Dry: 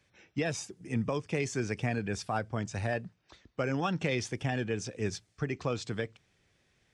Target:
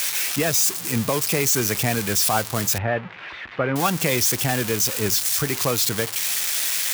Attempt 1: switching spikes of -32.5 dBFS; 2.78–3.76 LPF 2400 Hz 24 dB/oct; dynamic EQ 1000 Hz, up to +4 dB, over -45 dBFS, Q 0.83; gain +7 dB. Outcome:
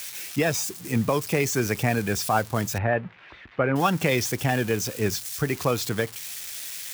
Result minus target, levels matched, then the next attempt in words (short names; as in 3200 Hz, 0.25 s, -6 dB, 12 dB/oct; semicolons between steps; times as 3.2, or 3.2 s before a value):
switching spikes: distortion -12 dB
switching spikes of -20.5 dBFS; 2.78–3.76 LPF 2400 Hz 24 dB/oct; dynamic EQ 1000 Hz, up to +4 dB, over -45 dBFS, Q 0.83; gain +7 dB